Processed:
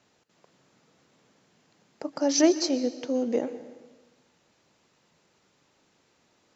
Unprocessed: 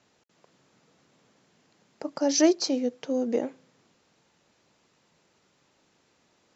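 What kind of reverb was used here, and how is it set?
dense smooth reverb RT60 1.2 s, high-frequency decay 1×, pre-delay 110 ms, DRR 13 dB

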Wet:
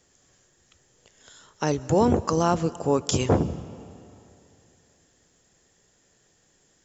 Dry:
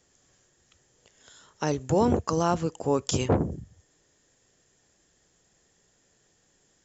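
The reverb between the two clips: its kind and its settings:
comb and all-pass reverb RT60 2.8 s, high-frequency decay 0.75×, pre-delay 110 ms, DRR 17.5 dB
level +2.5 dB

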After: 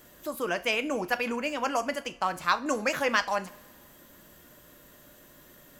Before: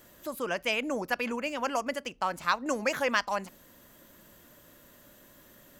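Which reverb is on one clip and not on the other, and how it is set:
coupled-rooms reverb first 0.3 s, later 1.8 s, from −20 dB, DRR 9.5 dB
level +1.5 dB

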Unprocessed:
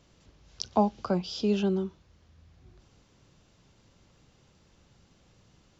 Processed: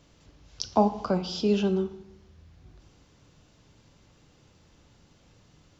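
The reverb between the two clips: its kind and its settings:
feedback delay network reverb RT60 0.91 s, low-frequency decay 1.25×, high-frequency decay 0.65×, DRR 8.5 dB
level +2 dB

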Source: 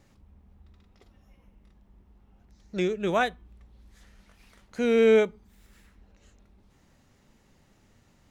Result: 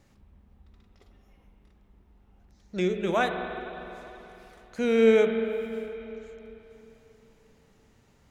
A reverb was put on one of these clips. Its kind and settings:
spring reverb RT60 3.4 s, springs 44/49 ms, chirp 25 ms, DRR 5 dB
level −1 dB

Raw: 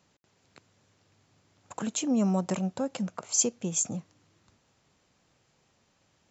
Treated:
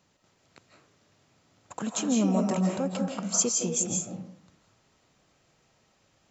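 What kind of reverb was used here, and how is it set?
comb and all-pass reverb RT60 0.66 s, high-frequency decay 0.55×, pre-delay 120 ms, DRR 0.5 dB

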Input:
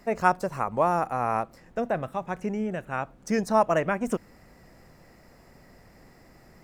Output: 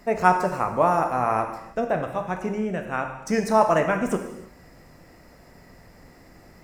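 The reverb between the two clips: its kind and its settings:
reverb whose tail is shaped and stops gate 350 ms falling, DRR 4.5 dB
level +2.5 dB

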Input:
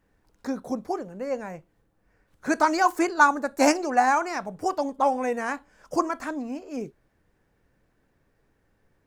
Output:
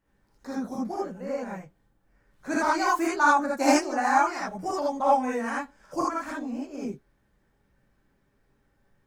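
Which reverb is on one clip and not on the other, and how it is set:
reverb whose tail is shaped and stops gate 100 ms rising, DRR −6 dB
level −8 dB

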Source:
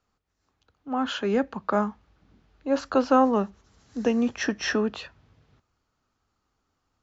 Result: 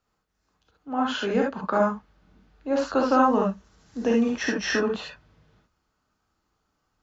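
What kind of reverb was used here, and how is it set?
reverb whose tail is shaped and stops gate 90 ms rising, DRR −1.5 dB
level −2 dB

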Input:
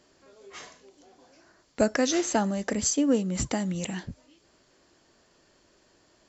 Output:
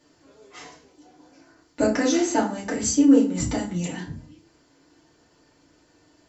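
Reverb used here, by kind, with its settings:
feedback delay network reverb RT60 0.41 s, low-frequency decay 1.55×, high-frequency decay 0.7×, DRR −6 dB
level −5 dB

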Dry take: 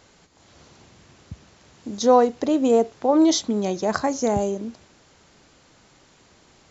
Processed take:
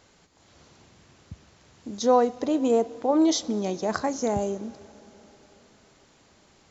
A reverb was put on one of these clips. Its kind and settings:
dense smooth reverb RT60 4.6 s, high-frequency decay 0.95×, DRR 19 dB
level −4 dB

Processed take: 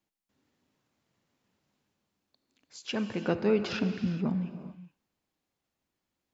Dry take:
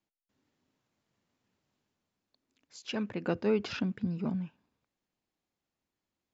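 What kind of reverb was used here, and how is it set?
reverb whose tail is shaped and stops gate 450 ms flat, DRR 8.5 dB
level +2.5 dB

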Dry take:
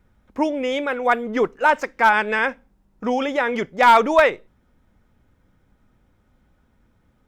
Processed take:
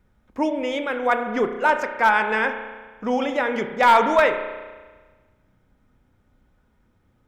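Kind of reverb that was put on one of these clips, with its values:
spring reverb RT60 1.4 s, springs 32 ms, chirp 75 ms, DRR 7 dB
level −2.5 dB

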